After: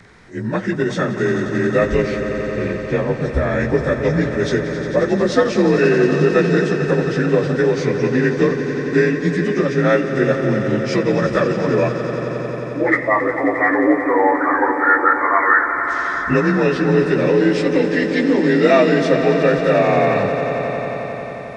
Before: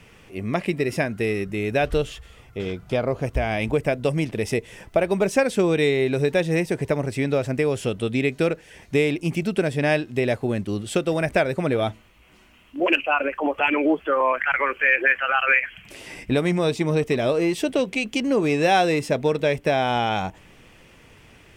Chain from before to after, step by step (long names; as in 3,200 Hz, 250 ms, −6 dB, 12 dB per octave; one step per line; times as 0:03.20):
partials spread apart or drawn together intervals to 87%
echo that builds up and dies away 89 ms, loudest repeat 5, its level −13 dB
level +6 dB